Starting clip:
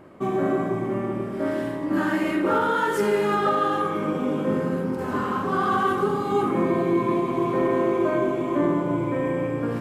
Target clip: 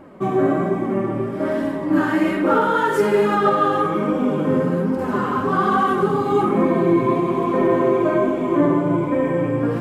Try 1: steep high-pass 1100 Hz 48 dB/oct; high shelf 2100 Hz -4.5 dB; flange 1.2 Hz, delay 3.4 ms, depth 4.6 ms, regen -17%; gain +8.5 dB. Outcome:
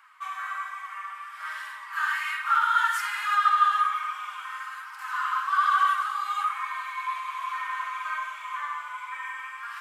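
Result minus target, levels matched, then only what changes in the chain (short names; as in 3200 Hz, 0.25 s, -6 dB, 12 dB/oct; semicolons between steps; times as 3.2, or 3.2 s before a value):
1000 Hz band +4.5 dB
remove: steep high-pass 1100 Hz 48 dB/oct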